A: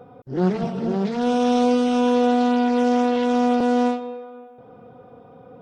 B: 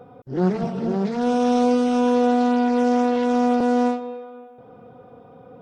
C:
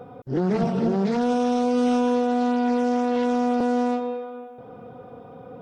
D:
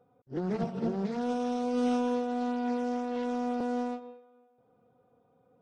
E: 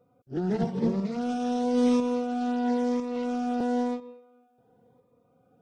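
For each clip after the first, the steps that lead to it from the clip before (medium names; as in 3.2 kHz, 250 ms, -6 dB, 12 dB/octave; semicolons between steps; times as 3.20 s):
dynamic bell 3.2 kHz, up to -5 dB, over -47 dBFS, Q 1.8
peak limiter -17 dBFS, peak gain reduction 9 dB; trim +3.5 dB
upward expansion 2.5:1, over -32 dBFS; trim -6 dB
tremolo saw up 1 Hz, depth 40%; Shepard-style phaser rising 0.96 Hz; trim +6.5 dB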